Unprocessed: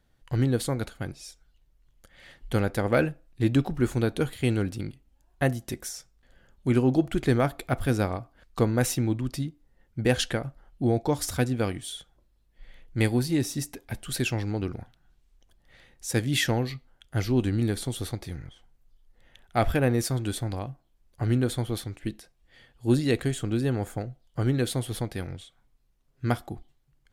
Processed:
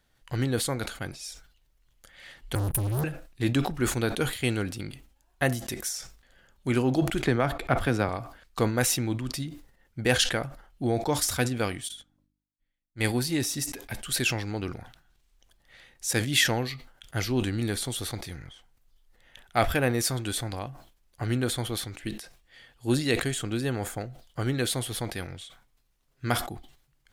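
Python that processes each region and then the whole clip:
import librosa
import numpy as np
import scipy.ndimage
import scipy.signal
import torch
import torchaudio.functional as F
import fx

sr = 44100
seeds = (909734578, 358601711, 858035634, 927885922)

y = fx.chain(x, sr, fx.cheby1_bandstop(low_hz=160.0, high_hz=9300.0, order=5),
    fx.leveller(passes=5), at=(2.55, 3.04))
y = fx.chain(y, sr, fx.lowpass(hz=2400.0, slope=6),
    fx.band_squash(depth_pct=100), at=(7.24, 8.09))
y = fx.low_shelf(y, sr, hz=70.0, db=4.5, at=(11.87, 13.03), fade=0.02)
y = fx.dmg_buzz(y, sr, base_hz=50.0, harmonics=6, level_db=-56.0, tilt_db=-1, odd_only=False, at=(11.87, 13.03), fade=0.02)
y = fx.upward_expand(y, sr, threshold_db=-51.0, expansion=2.5, at=(11.87, 13.03), fade=0.02)
y = fx.tilt_shelf(y, sr, db=-4.5, hz=700.0)
y = fx.sustainer(y, sr, db_per_s=100.0)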